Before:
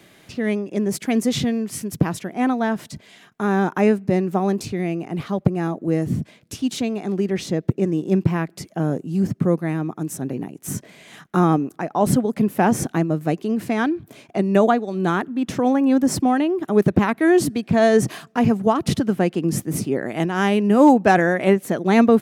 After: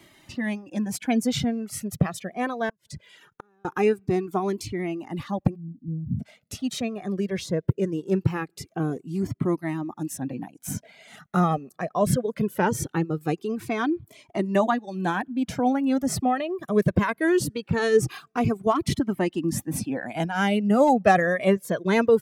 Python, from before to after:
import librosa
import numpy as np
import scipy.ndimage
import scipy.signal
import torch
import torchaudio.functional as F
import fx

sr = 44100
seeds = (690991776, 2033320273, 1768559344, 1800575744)

y = fx.cheby2_bandstop(x, sr, low_hz=1200.0, high_hz=8900.0, order=4, stop_db=80, at=(5.54, 6.19), fade=0.02)
y = fx.dereverb_blind(y, sr, rt60_s=0.64)
y = fx.gate_flip(y, sr, shuts_db=-19.0, range_db=-40, at=(2.69, 3.65))
y = fx.comb_cascade(y, sr, direction='falling', hz=0.21)
y = y * librosa.db_to_amplitude(1.5)